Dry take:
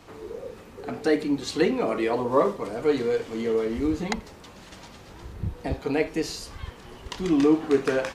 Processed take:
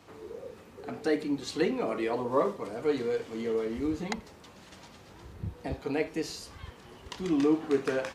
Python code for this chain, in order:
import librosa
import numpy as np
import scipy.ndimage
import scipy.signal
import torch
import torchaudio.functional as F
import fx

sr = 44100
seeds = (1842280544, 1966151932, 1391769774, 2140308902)

y = scipy.signal.sosfilt(scipy.signal.butter(2, 62.0, 'highpass', fs=sr, output='sos'), x)
y = y * 10.0 ** (-5.5 / 20.0)